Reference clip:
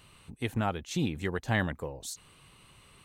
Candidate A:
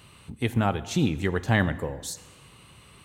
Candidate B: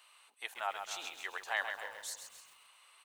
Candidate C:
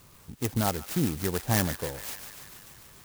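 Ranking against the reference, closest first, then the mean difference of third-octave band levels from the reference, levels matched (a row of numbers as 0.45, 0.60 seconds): A, C, B; 2.5, 8.0, 13.5 decibels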